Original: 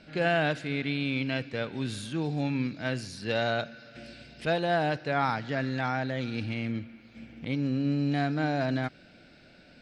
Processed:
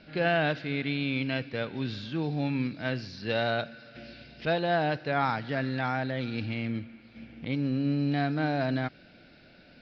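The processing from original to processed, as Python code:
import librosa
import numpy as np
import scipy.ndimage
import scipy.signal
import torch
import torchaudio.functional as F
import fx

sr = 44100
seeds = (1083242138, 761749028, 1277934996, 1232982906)

y = scipy.signal.sosfilt(scipy.signal.butter(8, 5300.0, 'lowpass', fs=sr, output='sos'), x)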